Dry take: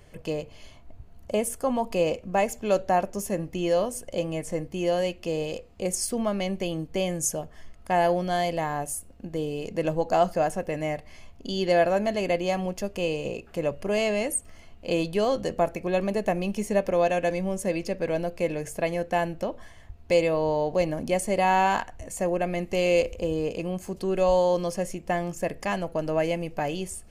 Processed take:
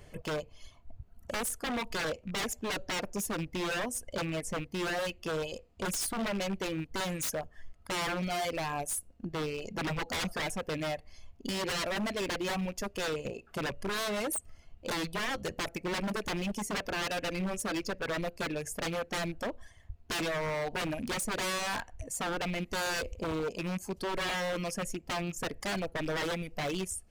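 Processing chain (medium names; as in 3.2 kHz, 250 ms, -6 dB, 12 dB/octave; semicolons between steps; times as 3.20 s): rattle on loud lows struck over -33 dBFS, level -30 dBFS; reverb removal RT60 1.9 s; wavefolder -28 dBFS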